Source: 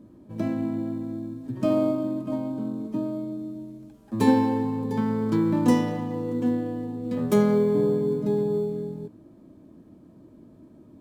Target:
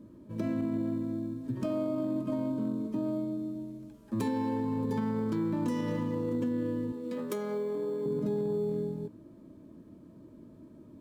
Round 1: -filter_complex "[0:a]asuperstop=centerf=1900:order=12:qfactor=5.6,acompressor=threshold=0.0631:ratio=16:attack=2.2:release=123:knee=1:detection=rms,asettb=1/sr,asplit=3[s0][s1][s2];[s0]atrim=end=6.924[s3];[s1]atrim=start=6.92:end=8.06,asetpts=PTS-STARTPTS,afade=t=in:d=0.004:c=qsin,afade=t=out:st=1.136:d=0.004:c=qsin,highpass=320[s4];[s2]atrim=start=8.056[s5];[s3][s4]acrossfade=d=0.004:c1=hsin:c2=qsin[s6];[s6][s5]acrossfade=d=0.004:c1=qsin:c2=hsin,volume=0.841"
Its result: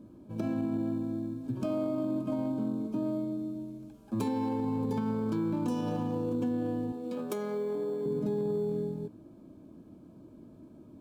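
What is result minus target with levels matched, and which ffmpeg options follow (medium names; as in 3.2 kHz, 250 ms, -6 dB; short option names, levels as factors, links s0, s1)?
2 kHz band -3.0 dB
-filter_complex "[0:a]asuperstop=centerf=750:order=12:qfactor=5.6,acompressor=threshold=0.0631:ratio=16:attack=2.2:release=123:knee=1:detection=rms,asettb=1/sr,asplit=3[s0][s1][s2];[s0]atrim=end=6.924[s3];[s1]atrim=start=6.92:end=8.06,asetpts=PTS-STARTPTS,afade=t=in:d=0.004:c=qsin,afade=t=out:st=1.136:d=0.004:c=qsin,highpass=320[s4];[s2]atrim=start=8.056[s5];[s3][s4]acrossfade=d=0.004:c1=hsin:c2=qsin[s6];[s6][s5]acrossfade=d=0.004:c1=qsin:c2=hsin,volume=0.841"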